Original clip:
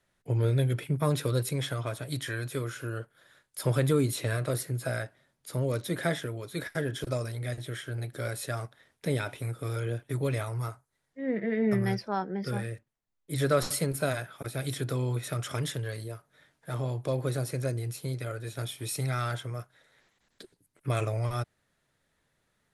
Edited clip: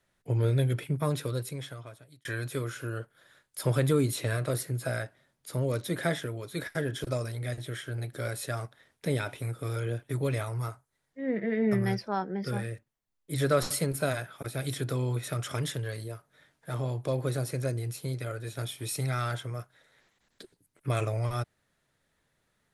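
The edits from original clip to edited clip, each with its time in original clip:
0.75–2.25 s: fade out linear

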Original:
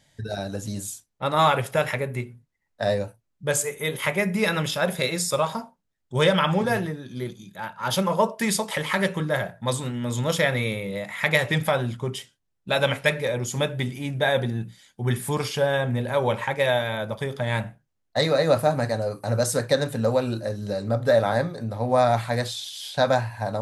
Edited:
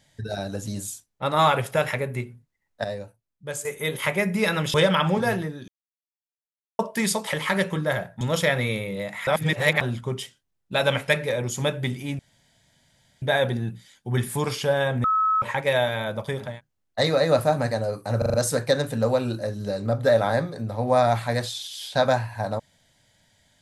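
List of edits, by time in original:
2.84–3.65 s: gain -8.5 dB
4.74–6.18 s: delete
7.12–8.23 s: mute
9.65–10.17 s: delete
11.23–11.77 s: reverse
14.15 s: insert room tone 1.03 s
15.97–16.35 s: bleep 1.29 kHz -18 dBFS
17.42–17.67 s: delete, crossfade 0.24 s
19.36 s: stutter 0.04 s, 5 plays

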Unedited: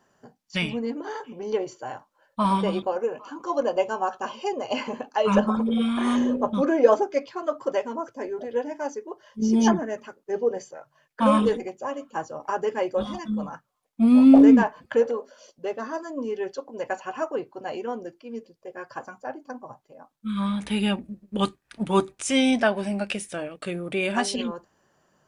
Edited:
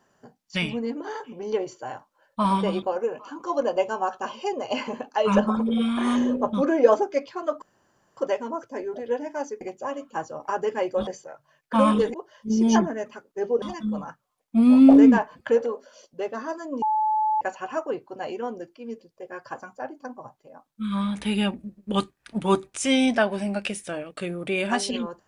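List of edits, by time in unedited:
7.62 s: insert room tone 0.55 s
9.06–10.54 s: swap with 11.61–13.07 s
16.27–16.86 s: bleep 863 Hz -19.5 dBFS

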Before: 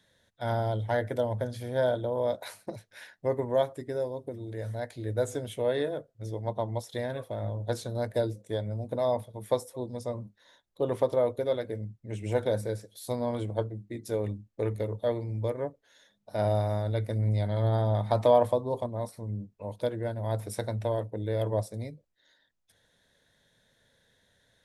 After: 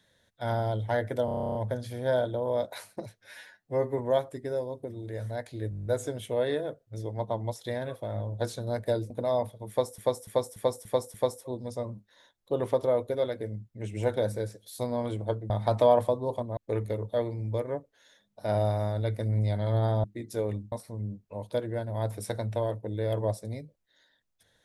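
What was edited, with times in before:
1.25 s: stutter 0.03 s, 11 plays
2.90–3.42 s: stretch 1.5×
5.14 s: stutter 0.02 s, 9 plays
8.38–8.84 s: delete
9.43–9.72 s: loop, 6 plays
13.79–14.47 s: swap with 17.94–19.01 s

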